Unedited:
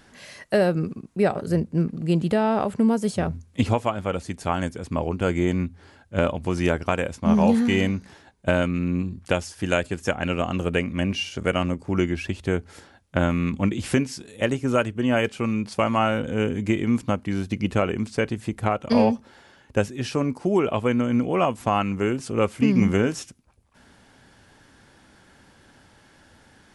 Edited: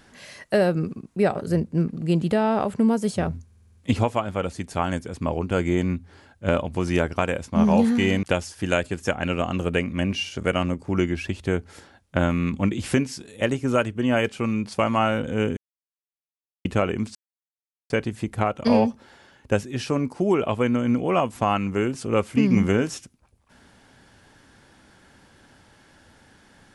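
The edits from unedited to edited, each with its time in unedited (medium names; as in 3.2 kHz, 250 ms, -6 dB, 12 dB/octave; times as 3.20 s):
3.45 s: stutter 0.05 s, 7 plays
7.93–9.23 s: delete
16.57–17.65 s: mute
18.15 s: insert silence 0.75 s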